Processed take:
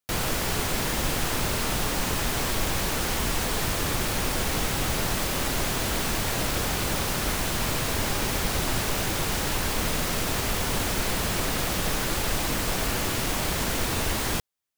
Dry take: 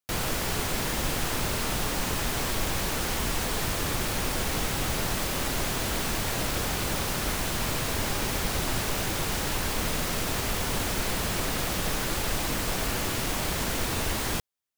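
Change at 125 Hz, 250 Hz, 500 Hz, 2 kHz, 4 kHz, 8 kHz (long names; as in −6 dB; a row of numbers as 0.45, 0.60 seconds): +2.0, +2.0, +2.0, +2.0, +2.0, +2.0 decibels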